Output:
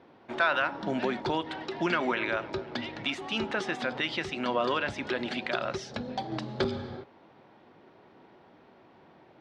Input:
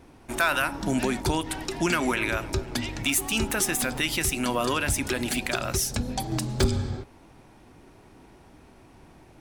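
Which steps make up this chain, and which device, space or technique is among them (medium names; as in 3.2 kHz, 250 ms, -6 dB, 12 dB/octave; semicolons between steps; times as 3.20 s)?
kitchen radio (cabinet simulation 200–3900 Hz, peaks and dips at 280 Hz -5 dB, 550 Hz +3 dB, 2.5 kHz -5 dB); trim -1.5 dB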